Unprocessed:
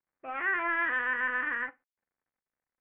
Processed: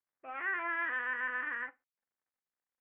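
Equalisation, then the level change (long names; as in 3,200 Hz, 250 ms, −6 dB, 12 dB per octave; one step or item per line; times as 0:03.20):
bass and treble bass +3 dB, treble −4 dB
low-shelf EQ 250 Hz −10.5 dB
−5.0 dB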